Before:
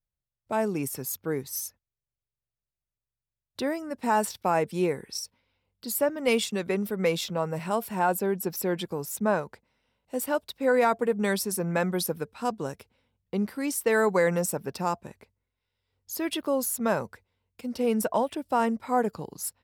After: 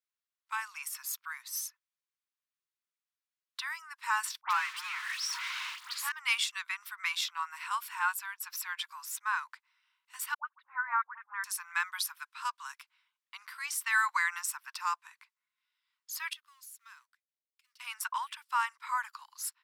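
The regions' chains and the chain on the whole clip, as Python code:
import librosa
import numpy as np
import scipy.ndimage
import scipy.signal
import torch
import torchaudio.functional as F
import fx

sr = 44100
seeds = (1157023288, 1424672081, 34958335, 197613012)

y = fx.chain(x, sr, fx.zero_step(step_db=-28.5),
    fx.high_shelf(hz=7000.0, db=-11.0),
    fx.dispersion(late='highs', ms=89.0, hz=1700.0), at=(4.41, 6.12))
y = fx.chain(y, sr, fx.lowpass(hz=1500.0, slope=24),
    fx.low_shelf(hz=480.0, db=-6.5),
    fx.dispersion(late='highs', ms=113.0, hz=660.0), at=(10.34, 11.44))
y = fx.chain(y, sr, fx.law_mismatch(coded='A'),
    fx.tone_stack(knobs='6-0-2'), at=(16.33, 17.8))
y = scipy.signal.sosfilt(scipy.signal.butter(12, 1000.0, 'highpass', fs=sr, output='sos'), y)
y = fx.high_shelf(y, sr, hz=6900.0, db=-9.0)
y = y * librosa.db_to_amplitude(2.5)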